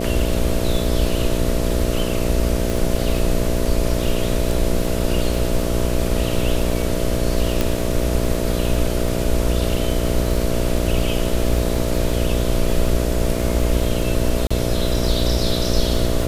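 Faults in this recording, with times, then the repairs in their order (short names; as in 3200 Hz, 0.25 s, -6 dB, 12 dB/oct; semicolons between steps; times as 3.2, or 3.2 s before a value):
buzz 60 Hz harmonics 11 -23 dBFS
crackle 40/s -24 dBFS
2.7 pop
7.61 pop
14.47–14.51 gap 35 ms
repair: de-click; de-hum 60 Hz, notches 11; interpolate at 14.47, 35 ms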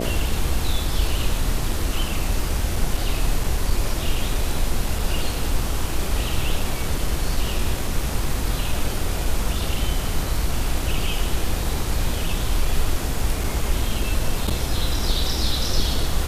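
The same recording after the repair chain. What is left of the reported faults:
none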